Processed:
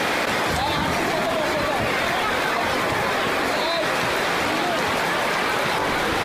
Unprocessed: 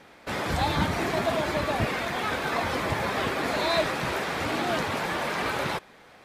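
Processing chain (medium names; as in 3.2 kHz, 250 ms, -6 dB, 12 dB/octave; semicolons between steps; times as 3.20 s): bass shelf 160 Hz -10 dB; de-hum 48.83 Hz, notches 32; frequency-shifting echo 463 ms, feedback 60%, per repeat -66 Hz, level -16 dB; level flattener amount 100%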